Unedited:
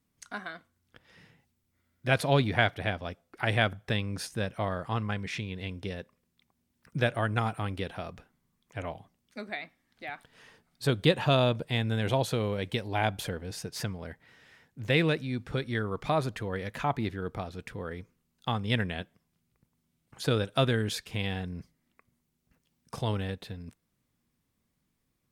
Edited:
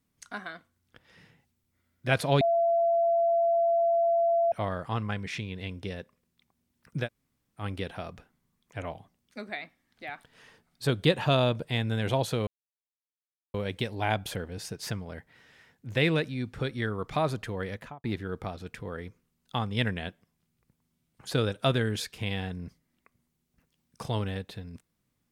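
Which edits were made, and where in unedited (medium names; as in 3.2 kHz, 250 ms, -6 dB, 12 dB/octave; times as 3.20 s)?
2.41–4.52 s: bleep 677 Hz -21 dBFS
7.04–7.61 s: room tone, crossfade 0.10 s
12.47 s: insert silence 1.07 s
16.62–16.97 s: studio fade out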